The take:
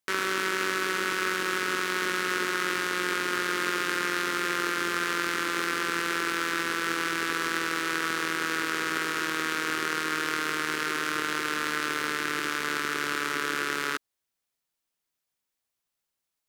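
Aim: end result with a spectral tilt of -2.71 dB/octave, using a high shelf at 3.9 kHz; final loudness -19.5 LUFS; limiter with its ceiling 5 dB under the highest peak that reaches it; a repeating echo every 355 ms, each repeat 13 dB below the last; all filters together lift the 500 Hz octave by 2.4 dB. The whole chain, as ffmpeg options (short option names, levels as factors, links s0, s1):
-af "equalizer=f=500:t=o:g=3.5,highshelf=f=3900:g=-6,alimiter=limit=0.141:level=0:latency=1,aecho=1:1:355|710|1065:0.224|0.0493|0.0108,volume=3.35"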